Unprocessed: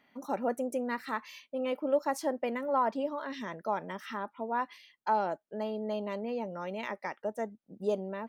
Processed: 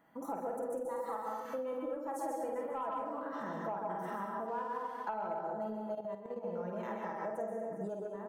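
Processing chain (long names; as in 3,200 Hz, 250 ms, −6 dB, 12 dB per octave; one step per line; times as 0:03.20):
flat-topped bell 3,400 Hz −14.5 dB
reverse bouncing-ball delay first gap 50 ms, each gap 1.5×, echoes 5
convolution reverb RT60 0.50 s, pre-delay 131 ms, DRR 2 dB
soft clipping −15.5 dBFS, distortion −26 dB
0:00.85–0:01.45: thirty-one-band graphic EQ 250 Hz −10 dB, 800 Hz +7 dB, 1,600 Hz −11 dB, 2,500 Hz −8 dB
downward compressor 12 to 1, threshold −37 dBFS, peak gain reduction 15.5 dB
comb filter 6.1 ms, depth 54%
0:04.48–0:05.08: slack as between gear wheels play −59 dBFS
0:05.94–0:06.45: output level in coarse steps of 10 dB
level +1 dB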